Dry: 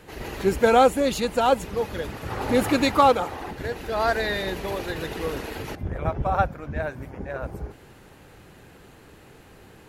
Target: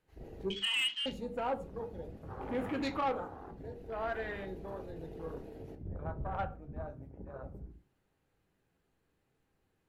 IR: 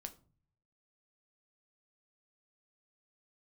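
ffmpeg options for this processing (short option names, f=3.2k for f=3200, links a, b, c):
-filter_complex "[0:a]asettb=1/sr,asplit=3[a][b][c];[a]atrim=end=0.504[d];[b]atrim=start=0.5:end=1.06,asetpts=PTS-STARTPTS,afade=t=in:d=0.004:c=qsin,afade=t=out:st=0.556:d=0.004:c=qsin,lowpass=f=2.9k:t=q:w=0.5098,lowpass=f=2.9k:t=q:w=0.6013,lowpass=f=2.9k:t=q:w=0.9,lowpass=f=2.9k:t=q:w=2.563,afreqshift=-3400[e];[c]atrim=start=1.056[f];[d][e]acrossfade=d=0.004:c1=hsin:c2=qsin[g];[g][f]acrossfade=d=0.004:c1=qsin:c2=hsin,afwtdn=0.0316[h];[1:a]atrim=start_sample=2205,afade=t=out:st=0.22:d=0.01,atrim=end_sample=10143[i];[h][i]afir=irnorm=-1:irlink=0,asoftclip=type=tanh:threshold=-18dB,volume=-8.5dB"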